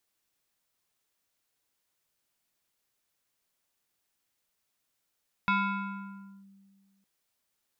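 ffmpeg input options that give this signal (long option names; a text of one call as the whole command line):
ffmpeg -f lavfi -i "aevalsrc='0.0841*pow(10,-3*t/1.94)*sin(2*PI*196*t+1.7*clip(1-t/0.97,0,1)*sin(2*PI*6.13*196*t))':duration=1.56:sample_rate=44100" out.wav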